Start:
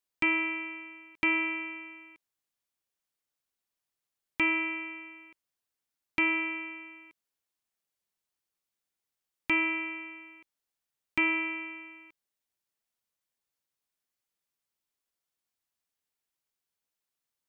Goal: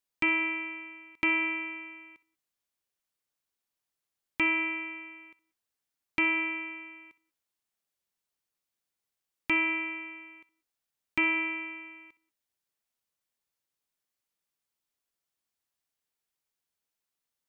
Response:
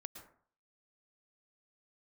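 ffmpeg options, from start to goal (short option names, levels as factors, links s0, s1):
-filter_complex "[0:a]asplit=2[s0][s1];[1:a]atrim=start_sample=2205,atrim=end_sample=6174,adelay=64[s2];[s1][s2]afir=irnorm=-1:irlink=0,volume=0.224[s3];[s0][s3]amix=inputs=2:normalize=0"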